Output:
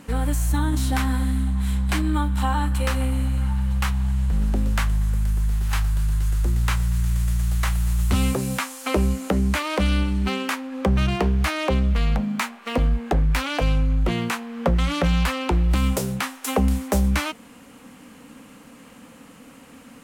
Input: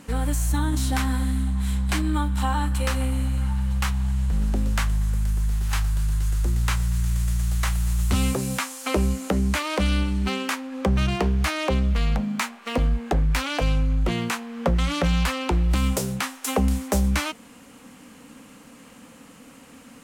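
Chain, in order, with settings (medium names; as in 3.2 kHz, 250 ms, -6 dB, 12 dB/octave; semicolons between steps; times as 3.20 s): peaking EQ 6.6 kHz -3.5 dB 1.5 oct; trim +1.5 dB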